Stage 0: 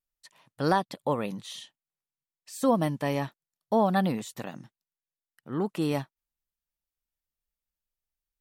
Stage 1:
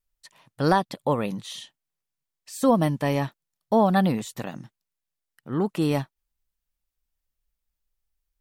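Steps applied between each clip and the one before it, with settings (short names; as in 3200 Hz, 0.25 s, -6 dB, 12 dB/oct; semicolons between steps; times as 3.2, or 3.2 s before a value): low shelf 72 Hz +11.5 dB; gain +3.5 dB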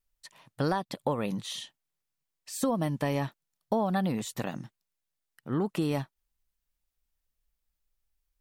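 compressor 6:1, threshold -25 dBFS, peak gain reduction 10.5 dB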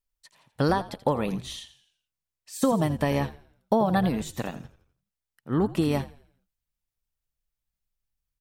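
on a send: frequency-shifting echo 84 ms, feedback 45%, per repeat -65 Hz, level -12 dB; on the sum: upward expander 1.5:1, over -45 dBFS; gain +6 dB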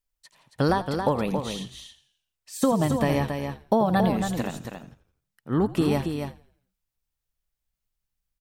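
echo 0.275 s -6.5 dB; gain +1 dB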